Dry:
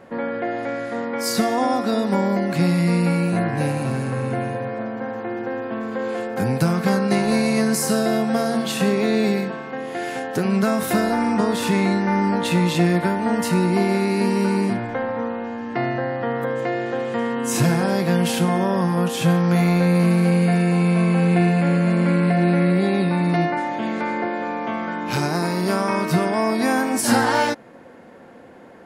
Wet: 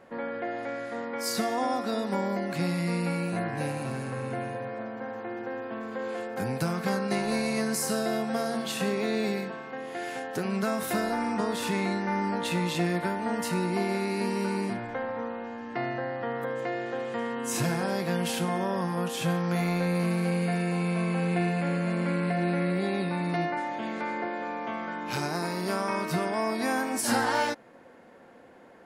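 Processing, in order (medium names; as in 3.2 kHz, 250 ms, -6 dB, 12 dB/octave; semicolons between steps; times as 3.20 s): peaking EQ 130 Hz -4.5 dB 3 oct; trim -6.5 dB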